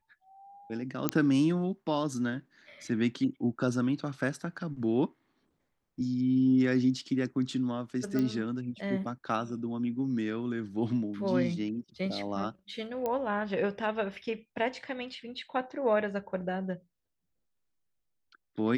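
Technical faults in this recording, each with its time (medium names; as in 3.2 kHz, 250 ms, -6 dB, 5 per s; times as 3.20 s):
1.09 s: pop -9 dBFS
8.19 s: pop -19 dBFS
13.06 s: pop -20 dBFS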